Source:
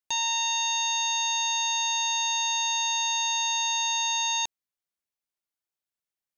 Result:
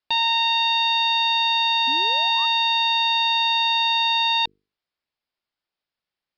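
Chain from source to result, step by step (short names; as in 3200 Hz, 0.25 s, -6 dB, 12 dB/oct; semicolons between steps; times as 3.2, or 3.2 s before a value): steep low-pass 5200 Hz 96 dB/oct; notches 50/100/150/200/250/300/350/400/450 Hz; painted sound rise, 1.87–2.46, 250–1300 Hz -45 dBFS; gain +8 dB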